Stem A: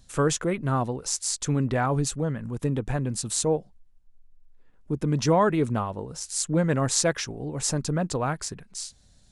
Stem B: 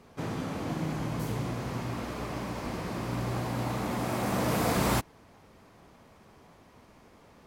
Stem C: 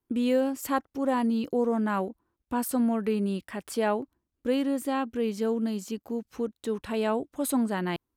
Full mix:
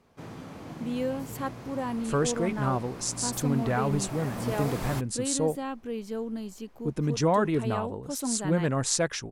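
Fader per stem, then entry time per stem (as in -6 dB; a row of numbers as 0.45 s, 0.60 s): -3.0 dB, -8.0 dB, -6.0 dB; 1.95 s, 0.00 s, 0.70 s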